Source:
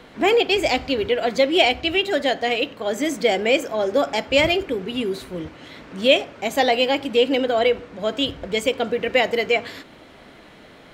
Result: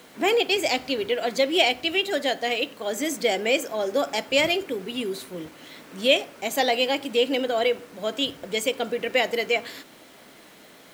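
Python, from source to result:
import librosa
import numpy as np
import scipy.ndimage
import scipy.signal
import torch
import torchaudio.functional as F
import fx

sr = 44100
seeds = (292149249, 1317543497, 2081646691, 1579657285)

y = scipy.signal.sosfilt(scipy.signal.butter(2, 160.0, 'highpass', fs=sr, output='sos'), x)
y = fx.high_shelf(y, sr, hz=5900.0, db=11.0)
y = fx.quant_dither(y, sr, seeds[0], bits=8, dither='none')
y = y * 10.0 ** (-4.5 / 20.0)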